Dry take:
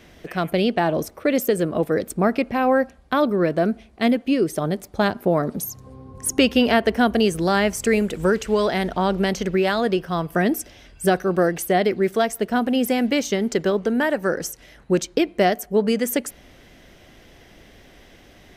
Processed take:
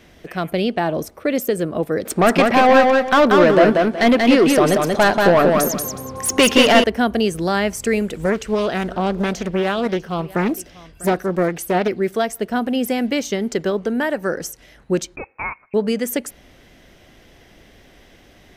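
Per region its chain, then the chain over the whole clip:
2.05–6.84 s: overdrive pedal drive 22 dB, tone 3.8 kHz, clips at -4.5 dBFS + feedback delay 185 ms, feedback 26%, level -3 dB
8.23–11.88 s: delay 647 ms -20 dB + loudspeaker Doppler distortion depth 0.47 ms
15.16–15.74 s: high-pass 1.2 kHz + frequency inversion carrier 2.9 kHz
whole clip: none

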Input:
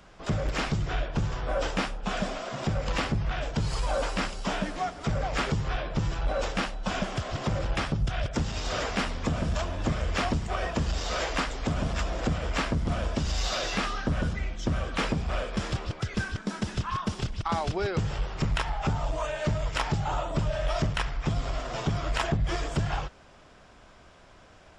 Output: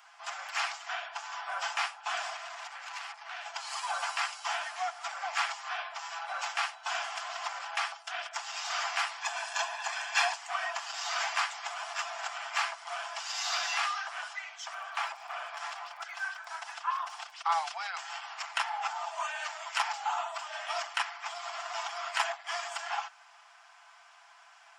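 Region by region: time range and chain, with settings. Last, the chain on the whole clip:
2.36–3.46 s: high-pass 250 Hz 24 dB/octave + compression, threshold -33 dBFS + transformer saturation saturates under 2.4 kHz
9.21–10.36 s: tilt shelf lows -3.5 dB, about 870 Hz + comb 1.2 ms, depth 59%
14.73–17.30 s: tilt shelf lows +5 dB, about 1.5 kHz + compression 2.5:1, threshold -25 dBFS + crackle 31 per s -44 dBFS
whole clip: steep high-pass 720 Hz 72 dB/octave; peaking EQ 3.7 kHz -5 dB 0.23 oct; comb 5.9 ms, depth 47%

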